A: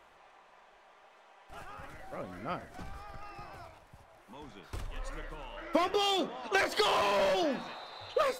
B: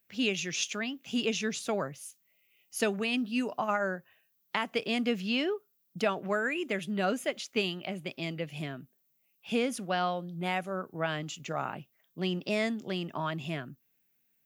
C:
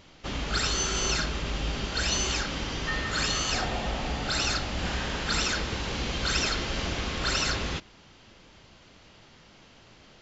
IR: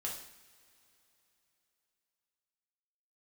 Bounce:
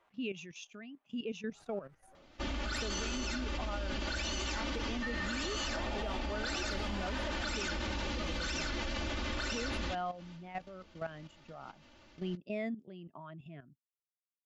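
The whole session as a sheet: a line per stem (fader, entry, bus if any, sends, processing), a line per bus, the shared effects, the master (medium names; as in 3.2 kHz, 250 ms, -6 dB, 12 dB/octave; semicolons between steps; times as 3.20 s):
-2.0 dB, 0.00 s, no bus, no send, waveshaping leveller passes 1; endless flanger 8.8 ms -1.4 Hz; auto duck -12 dB, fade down 0.25 s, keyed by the second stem
-6.5 dB, 0.00 s, bus A, no send, spectral contrast expander 1.5:1
-2.5 dB, 2.15 s, bus A, no send, comb 3.4 ms, depth 83%; vibrato 12 Hz 30 cents
bus A: 0.0 dB, peak limiter -21.5 dBFS, peak gain reduction 8 dB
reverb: none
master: treble shelf 5.3 kHz -6.5 dB; level held to a coarse grid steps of 12 dB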